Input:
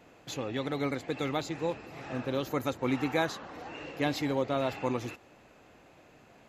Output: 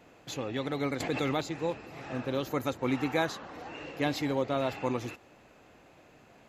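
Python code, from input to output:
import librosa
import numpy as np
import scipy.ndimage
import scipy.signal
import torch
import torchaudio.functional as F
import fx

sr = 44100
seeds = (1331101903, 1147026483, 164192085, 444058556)

y = fx.env_flatten(x, sr, amount_pct=70, at=(1.0, 1.41))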